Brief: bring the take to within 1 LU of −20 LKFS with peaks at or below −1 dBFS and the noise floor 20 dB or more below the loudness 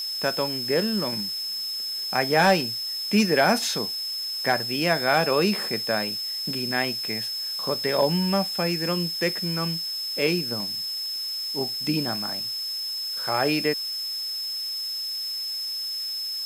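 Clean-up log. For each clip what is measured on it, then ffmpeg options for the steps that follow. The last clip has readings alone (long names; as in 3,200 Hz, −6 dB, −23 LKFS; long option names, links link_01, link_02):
interfering tone 5,200 Hz; level of the tone −28 dBFS; background noise floor −31 dBFS; target noise floor −45 dBFS; integrated loudness −24.5 LKFS; sample peak −7.0 dBFS; target loudness −20.0 LKFS
→ -af "bandreject=frequency=5200:width=30"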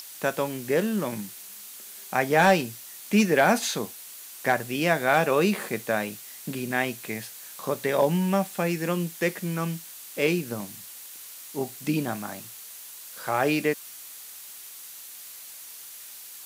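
interfering tone none found; background noise floor −43 dBFS; target noise floor −46 dBFS
→ -af "afftdn=noise_reduction=6:noise_floor=-43"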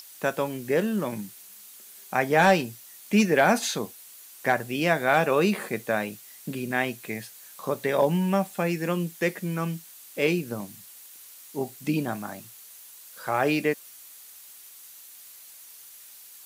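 background noise floor −48 dBFS; integrated loudness −26.0 LKFS; sample peak −8.0 dBFS; target loudness −20.0 LKFS
→ -af "volume=6dB"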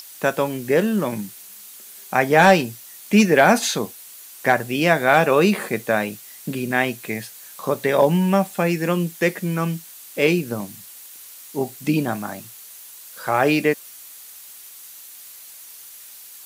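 integrated loudness −20.0 LKFS; sample peak −2.0 dBFS; background noise floor −42 dBFS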